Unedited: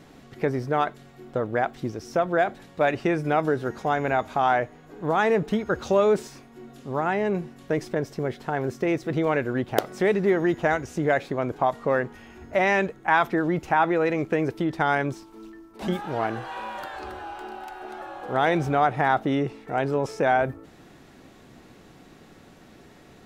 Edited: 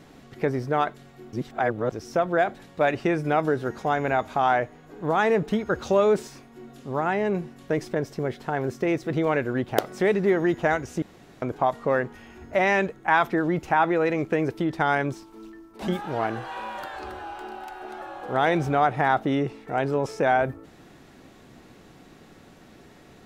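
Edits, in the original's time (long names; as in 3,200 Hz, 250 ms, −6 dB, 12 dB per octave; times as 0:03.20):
0:01.33–0:01.92: reverse
0:11.02–0:11.42: fill with room tone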